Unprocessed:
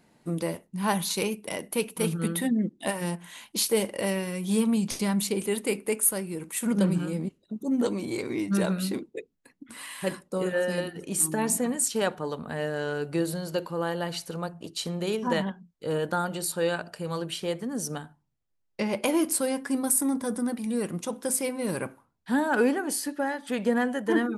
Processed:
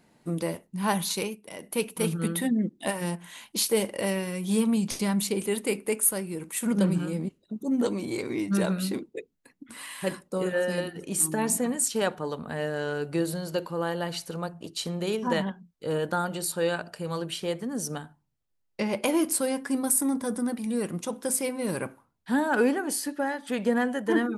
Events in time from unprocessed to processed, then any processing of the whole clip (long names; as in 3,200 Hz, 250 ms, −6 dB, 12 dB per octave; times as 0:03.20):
0:01.12–0:01.80: duck −9 dB, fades 0.27 s